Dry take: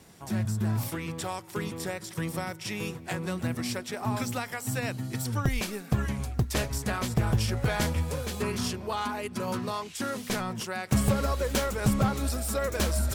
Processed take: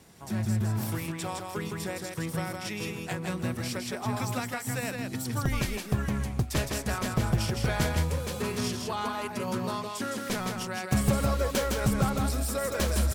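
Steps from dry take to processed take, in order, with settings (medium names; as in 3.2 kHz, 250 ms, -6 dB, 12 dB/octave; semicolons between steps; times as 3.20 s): delay 162 ms -4 dB; trim -1.5 dB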